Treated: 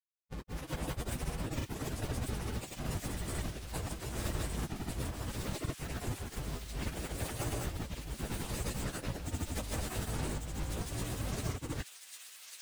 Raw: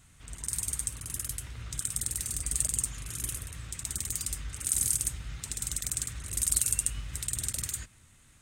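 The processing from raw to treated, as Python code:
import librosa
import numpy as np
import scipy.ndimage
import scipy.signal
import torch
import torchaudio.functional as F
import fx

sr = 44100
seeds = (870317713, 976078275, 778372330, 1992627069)

y = scipy.ndimage.median_filter(x, 41, mode='constant')
y = fx.quant_companded(y, sr, bits=2)
y = fx.granulator(y, sr, seeds[0], grain_ms=100.0, per_s=20.0, spray_ms=100.0, spread_st=0)
y = fx.dmg_buzz(y, sr, base_hz=120.0, harmonics=22, level_db=-63.0, tilt_db=-8, odd_only=False)
y = fx.over_compress(y, sr, threshold_db=-33.0, ratio=-0.5)
y = fx.quant_dither(y, sr, seeds[1], bits=8, dither='none')
y = fx.stretch_vocoder_free(y, sr, factor=1.5)
y = fx.echo_wet_highpass(y, sr, ms=1147, feedback_pct=50, hz=2700.0, wet_db=-3.0)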